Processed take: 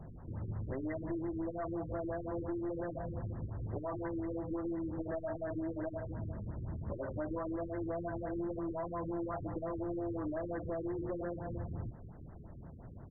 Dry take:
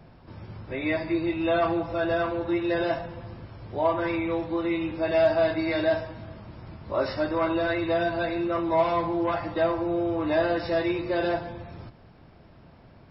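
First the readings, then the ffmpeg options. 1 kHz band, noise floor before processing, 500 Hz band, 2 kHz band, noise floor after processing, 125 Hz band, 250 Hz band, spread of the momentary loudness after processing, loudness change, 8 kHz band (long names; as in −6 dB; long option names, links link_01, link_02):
−15.5 dB, −52 dBFS, −14.0 dB, −20.5 dB, −50 dBFS, −4.0 dB, −10.0 dB, 5 LU, −13.0 dB, can't be measured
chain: -af "lowshelf=frequency=170:gain=8,alimiter=limit=-18dB:level=0:latency=1:release=20,acompressor=threshold=-31dB:ratio=6,aresample=16000,aeval=exprs='clip(val(0),-1,0.02)':channel_layout=same,aresample=44100,afftfilt=real='re*lt(b*sr/1024,450*pow(2100/450,0.5+0.5*sin(2*PI*5.7*pts/sr)))':imag='im*lt(b*sr/1024,450*pow(2100/450,0.5+0.5*sin(2*PI*5.7*pts/sr)))':win_size=1024:overlap=0.75,volume=-2.5dB"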